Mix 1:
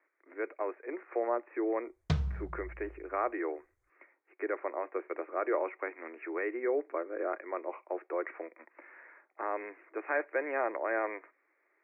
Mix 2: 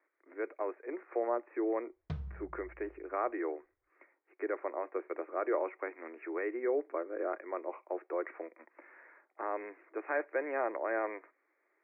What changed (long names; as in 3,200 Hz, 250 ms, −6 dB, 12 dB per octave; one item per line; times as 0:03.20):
background −9.0 dB
master: add head-to-tape spacing loss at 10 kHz 20 dB